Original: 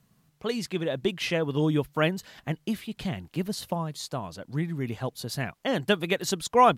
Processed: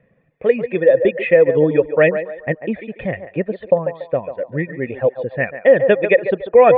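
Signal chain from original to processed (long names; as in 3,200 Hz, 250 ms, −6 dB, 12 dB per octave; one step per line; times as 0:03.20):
reverb reduction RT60 1.2 s
formant resonators in series e
on a send: feedback echo with a band-pass in the loop 142 ms, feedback 41%, band-pass 760 Hz, level −9 dB
on the sum: boost into a limiter +25.5 dB
level −1 dB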